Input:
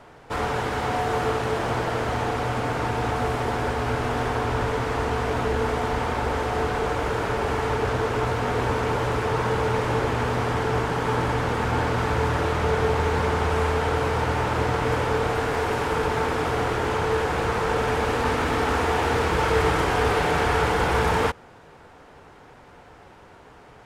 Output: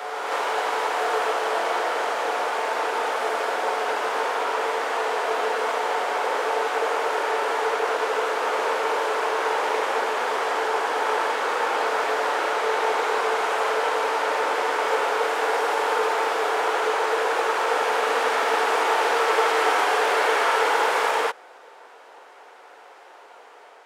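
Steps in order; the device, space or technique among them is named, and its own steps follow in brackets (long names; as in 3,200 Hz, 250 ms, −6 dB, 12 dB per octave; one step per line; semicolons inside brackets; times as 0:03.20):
ghost voice (reversed playback; convolution reverb RT60 2.5 s, pre-delay 18 ms, DRR −0.5 dB; reversed playback; high-pass filter 440 Hz 24 dB per octave)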